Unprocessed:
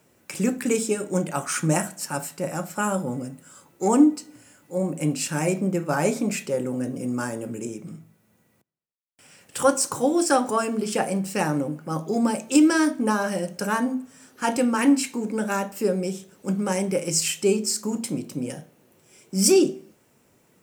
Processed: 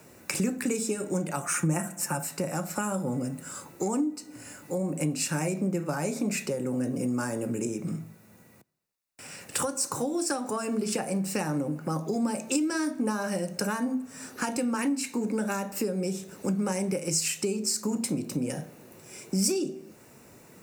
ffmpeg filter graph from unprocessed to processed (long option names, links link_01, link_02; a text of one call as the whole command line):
ffmpeg -i in.wav -filter_complex "[0:a]asettb=1/sr,asplit=3[link_01][link_02][link_03];[link_01]atrim=end=1.424[link_04];[link_02]atrim=start=1.42:end=2.23,asetpts=PTS-STARTPTS,afade=type=in:duration=0.004:curve=qsin,afade=type=out:start_time=0.806:duration=0.004:curve=qsin,equalizer=frequency=4400:width_type=o:width=0.62:gain=-12,aecho=1:1:5.8:0.58,atrim=end_sample=35721[link_05];[link_03]atrim=start=2.226[link_06];[link_04][link_05]acrossfade=duration=0.004:curve1=hsin:curve2=qsin[link_07];[link_07][link_06]acrossfade=duration=0.004:curve1=qsin:curve2=hsin,acompressor=threshold=-37dB:ratio=3,bandreject=frequency=3200:width=6.8,acrossover=split=250|3000[link_08][link_09][link_10];[link_09]acompressor=threshold=-37dB:ratio=6[link_11];[link_08][link_11][link_10]amix=inputs=3:normalize=0,volume=8.5dB" out.wav